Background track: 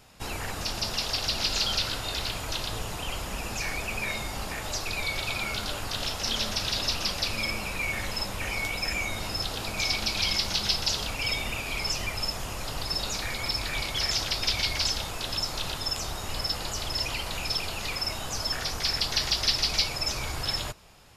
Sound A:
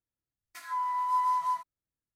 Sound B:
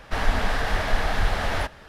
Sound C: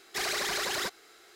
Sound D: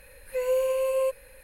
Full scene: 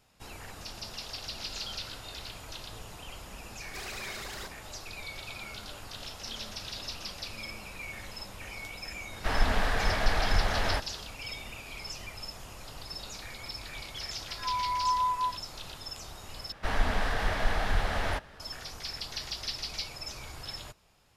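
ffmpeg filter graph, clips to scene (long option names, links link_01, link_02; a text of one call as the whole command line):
ffmpeg -i bed.wav -i cue0.wav -i cue1.wav -i cue2.wav -filter_complex "[2:a]asplit=2[link_01][link_02];[0:a]volume=-11dB[link_03];[1:a]lowpass=frequency=2400:poles=1[link_04];[link_03]asplit=2[link_05][link_06];[link_05]atrim=end=16.524[link_07];[link_02]atrim=end=1.88,asetpts=PTS-STARTPTS,volume=-5dB[link_08];[link_06]atrim=start=18.396[link_09];[3:a]atrim=end=1.35,asetpts=PTS-STARTPTS,volume=-10.5dB,afade=type=in:duration=0.004:curve=hsin,afade=type=out:start_time=1.346:duration=0.004:curve=hsin,adelay=3590[link_10];[link_01]atrim=end=1.88,asetpts=PTS-STARTPTS,volume=-3.5dB,afade=type=in:duration=0.004:curve=hsin,afade=type=out:start_time=1.876:duration=0.004:curve=hsin,adelay=9130[link_11];[link_04]atrim=end=2.15,asetpts=PTS-STARTPTS,afade=type=in:duration=0.004:curve=hsin,afade=type=out:start_time=2.146:duration=0.004:curve=hsin,adelay=13740[link_12];[link_07][link_08]acrossfade=duration=0.004:curve1=hsin:curve2=hsin[link_13];[link_13][link_09]acrossfade=duration=0.004:curve1=hsin:curve2=hsin[link_14];[link_14][link_10][link_11][link_12]amix=inputs=4:normalize=0" out.wav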